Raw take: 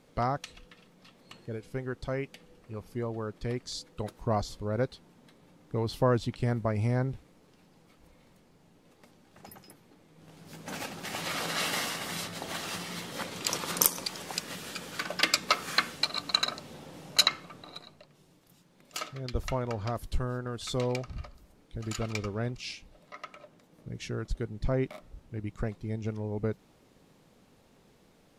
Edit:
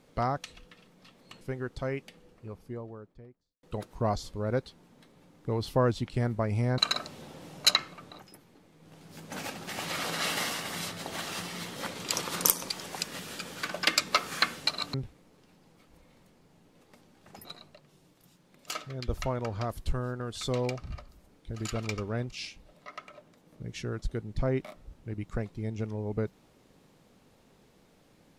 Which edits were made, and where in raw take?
1.41–1.67 cut
2.24–3.89 studio fade out
7.04–9.55 swap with 16.3–17.71

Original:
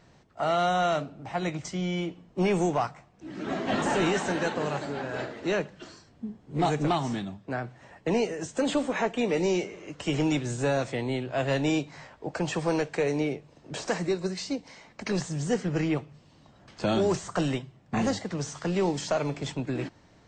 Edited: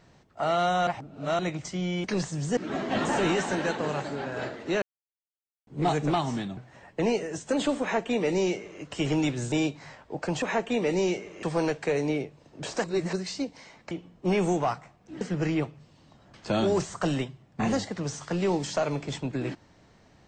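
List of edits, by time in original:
0.87–1.39 reverse
2.04–3.34 swap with 15.02–15.55
5.59–6.44 mute
7.34–7.65 cut
8.89–9.9 copy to 12.54
10.6–11.64 cut
13.95–14.24 reverse

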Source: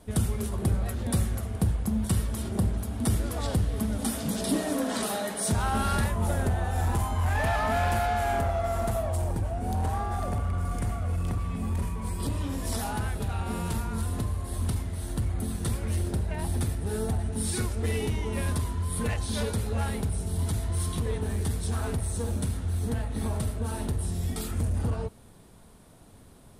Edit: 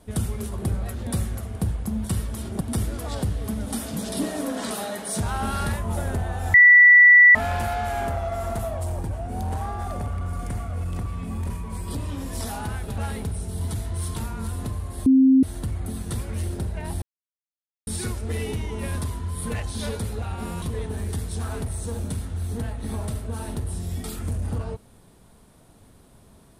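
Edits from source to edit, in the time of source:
2.61–2.93 cut
6.86–7.67 bleep 1960 Hz -8 dBFS
13.3–13.7 swap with 19.76–20.94
14.6–14.97 bleep 264 Hz -11.5 dBFS
16.56–17.41 mute

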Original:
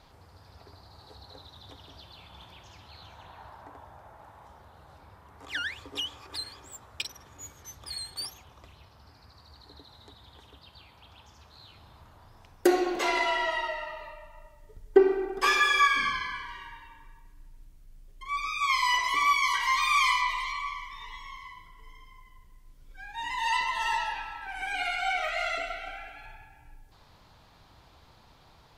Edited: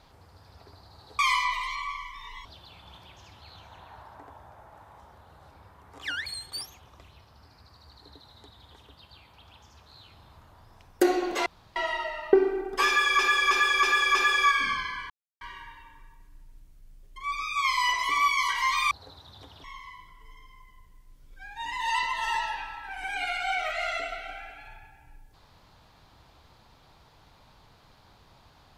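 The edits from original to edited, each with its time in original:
1.19–1.92 swap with 19.96–21.22
5.73–7.9 cut
13.1–13.4 room tone
13.97–14.97 cut
15.51–15.83 loop, 5 plays
16.46 insert silence 0.31 s

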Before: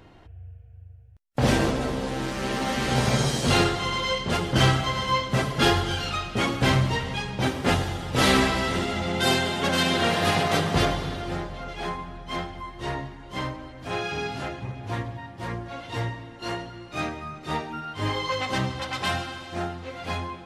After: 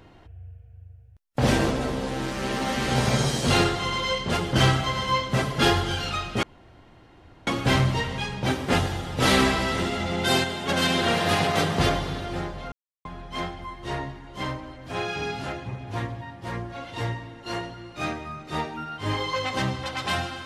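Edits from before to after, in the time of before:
6.43 insert room tone 1.04 s
9.4–9.65 gain -4 dB
11.68–12.01 mute

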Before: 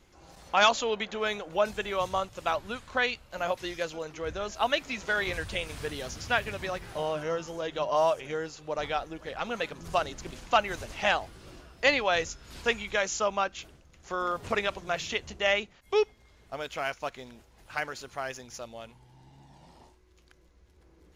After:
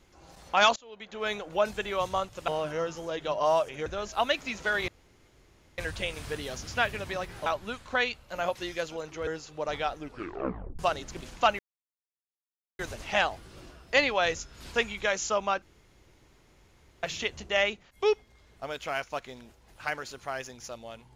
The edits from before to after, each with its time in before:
0.76–1.31 fade in quadratic, from -24 dB
2.48–4.29 swap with 6.99–8.37
5.31 insert room tone 0.90 s
9.08 tape stop 0.81 s
10.69 insert silence 1.20 s
13.52–14.93 room tone

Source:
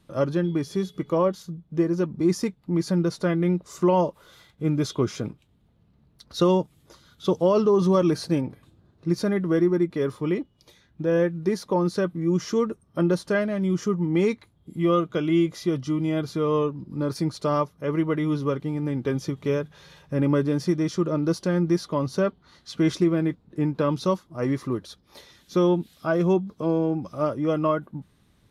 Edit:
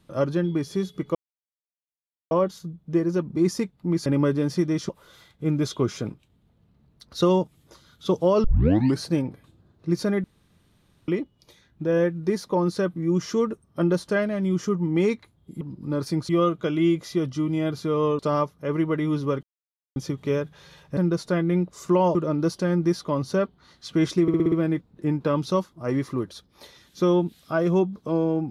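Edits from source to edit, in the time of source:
1.15 insert silence 1.16 s
2.9–4.08 swap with 20.16–20.99
7.63 tape start 0.55 s
9.43–10.27 room tone
16.7–17.38 move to 14.8
18.62–19.15 mute
23.06 stutter 0.06 s, 6 plays

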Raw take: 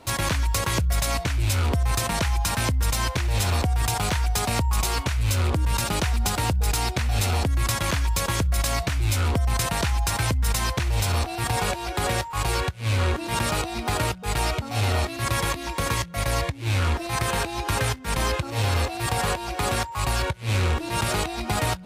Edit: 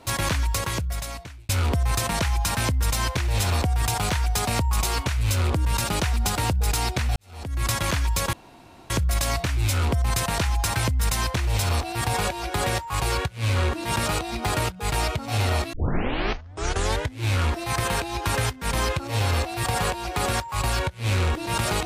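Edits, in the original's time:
0.4–1.49 fade out
7.16–7.67 fade in quadratic
8.33 insert room tone 0.57 s
15.16 tape start 1.48 s

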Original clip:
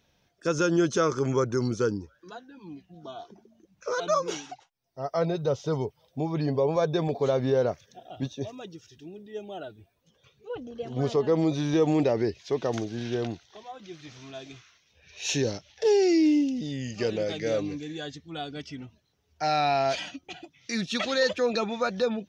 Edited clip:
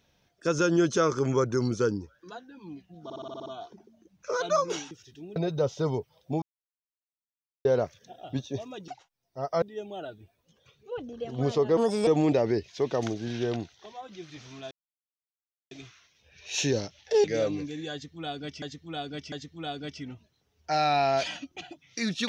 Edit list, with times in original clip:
3.04 stutter 0.06 s, 8 plays
4.49–5.23 swap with 8.75–9.2
6.29–7.52 mute
11.35–11.78 speed 143%
14.42 insert silence 1.00 s
15.95–17.36 cut
18.04–18.74 loop, 3 plays

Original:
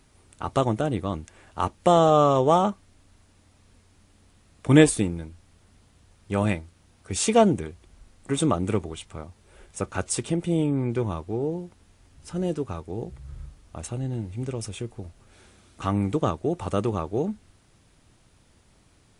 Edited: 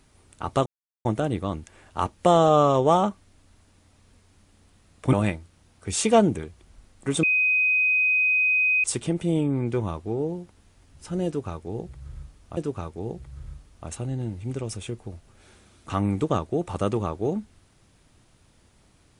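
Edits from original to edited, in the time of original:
0.66 insert silence 0.39 s
4.74–6.36 cut
8.46–10.07 bleep 2510 Hz -18 dBFS
12.49–13.8 loop, 2 plays

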